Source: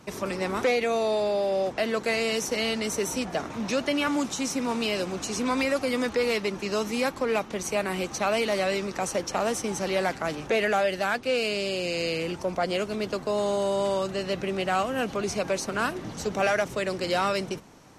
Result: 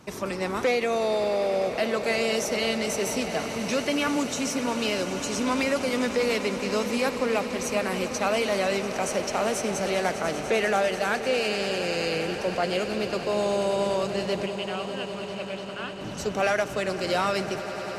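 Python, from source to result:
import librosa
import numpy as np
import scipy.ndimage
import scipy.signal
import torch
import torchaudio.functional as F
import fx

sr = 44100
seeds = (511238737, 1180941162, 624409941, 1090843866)

y = fx.ladder_lowpass(x, sr, hz=3300.0, resonance_pct=70, at=(14.46, 16.01))
y = fx.echo_swell(y, sr, ms=99, loudest=8, wet_db=-17.0)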